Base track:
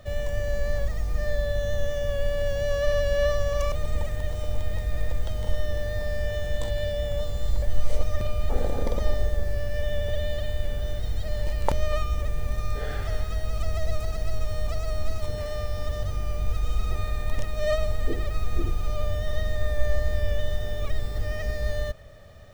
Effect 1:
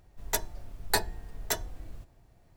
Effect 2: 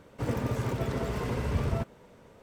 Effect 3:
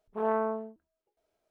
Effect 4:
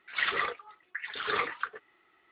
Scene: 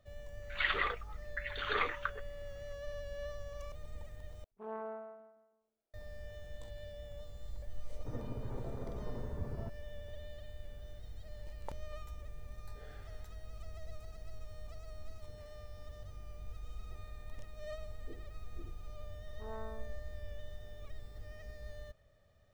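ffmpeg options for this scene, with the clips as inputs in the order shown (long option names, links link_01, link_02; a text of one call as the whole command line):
ffmpeg -i bed.wav -i cue0.wav -i cue1.wav -i cue2.wav -i cue3.wav -filter_complex "[3:a]asplit=2[link_01][link_02];[0:a]volume=-20dB[link_03];[link_01]aecho=1:1:165|330|495|660:0.501|0.165|0.0546|0.018[link_04];[2:a]lowpass=1000[link_05];[1:a]acompressor=threshold=-46dB:ratio=6:attack=3.2:release=140:knee=1:detection=peak[link_06];[link_03]asplit=2[link_07][link_08];[link_07]atrim=end=4.444[link_09];[link_04]atrim=end=1.5,asetpts=PTS-STARTPTS,volume=-14.5dB[link_10];[link_08]atrim=start=5.936[link_11];[4:a]atrim=end=2.31,asetpts=PTS-STARTPTS,volume=-3.5dB,afade=type=in:duration=0.004:curve=hsin,afade=type=out:start_time=2.306:duration=0.004:curve=hsin,adelay=420[link_12];[link_05]atrim=end=2.42,asetpts=PTS-STARTPTS,volume=-13dB,afade=type=in:duration=0.004:curve=hsin,afade=type=out:start_time=2.416:duration=0.004:curve=hsin,adelay=346626S[link_13];[link_06]atrim=end=2.56,asetpts=PTS-STARTPTS,volume=-16dB,afade=type=in:duration=0.004:curve=hsin,afade=type=out:start_time=2.556:duration=0.004:curve=hsin,adelay=11740[link_14];[link_02]atrim=end=1.5,asetpts=PTS-STARTPTS,volume=-18dB,afade=type=in:duration=0.004:curve=hsin,afade=type=out:start_time=1.496:duration=0.004:curve=hsin,adelay=848484S[link_15];[link_09][link_10]acrossfade=duration=0.004:curve1=hsin:curve2=hsin[link_16];[link_16][link_11]acrossfade=duration=0.004:curve1=hsin:curve2=hsin[link_17];[link_17][link_12][link_13][link_14][link_15]amix=inputs=5:normalize=0" out.wav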